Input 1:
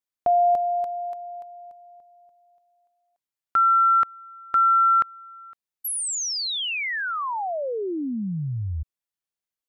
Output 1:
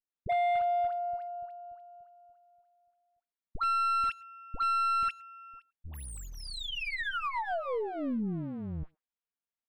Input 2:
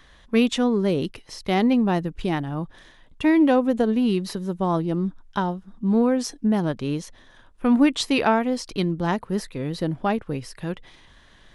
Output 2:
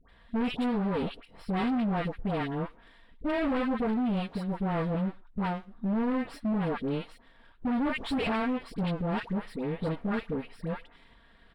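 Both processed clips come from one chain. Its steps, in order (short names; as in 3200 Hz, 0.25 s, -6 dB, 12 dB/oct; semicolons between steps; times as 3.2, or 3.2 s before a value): minimum comb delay 4.3 ms; dispersion highs, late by 91 ms, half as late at 970 Hz; overloaded stage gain 22.5 dB; running mean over 7 samples; speakerphone echo 0.11 s, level -24 dB; gain -3.5 dB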